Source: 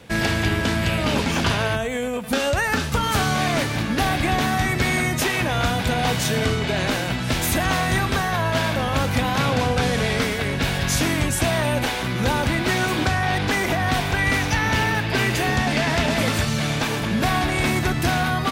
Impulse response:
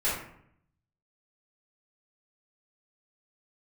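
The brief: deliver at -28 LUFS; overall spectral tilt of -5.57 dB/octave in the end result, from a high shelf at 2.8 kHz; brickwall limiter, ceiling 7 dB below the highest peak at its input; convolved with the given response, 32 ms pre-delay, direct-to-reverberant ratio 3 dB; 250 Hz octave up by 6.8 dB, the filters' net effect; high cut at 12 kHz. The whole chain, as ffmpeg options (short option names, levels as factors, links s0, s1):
-filter_complex "[0:a]lowpass=12000,equalizer=f=250:t=o:g=8.5,highshelf=f=2800:g=-7.5,alimiter=limit=0.211:level=0:latency=1,asplit=2[s0][s1];[1:a]atrim=start_sample=2205,adelay=32[s2];[s1][s2]afir=irnorm=-1:irlink=0,volume=0.211[s3];[s0][s3]amix=inputs=2:normalize=0,volume=0.447"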